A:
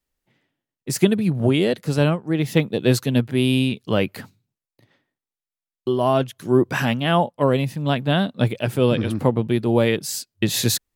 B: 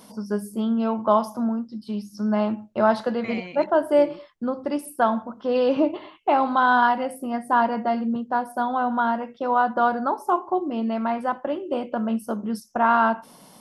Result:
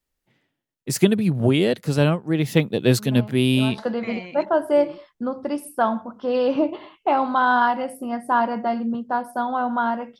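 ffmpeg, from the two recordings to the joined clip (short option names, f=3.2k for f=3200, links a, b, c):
-filter_complex "[1:a]asplit=2[a][b];[0:a]apad=whole_dur=10.19,atrim=end=10.19,atrim=end=3.782[c];[b]atrim=start=2.988:end=9.4[d];[a]atrim=start=2.09:end=2.99,asetpts=PTS-STARTPTS,volume=-14dB,afade=t=in:d=0.004:c=hsin,afade=t=out:st=0.896:d=0.004:c=hsin,adelay=2880[e];[c][d]acrossfade=d=0.004:c1=hsin:c2=hsin[f];[f][e]amix=inputs=2:normalize=0"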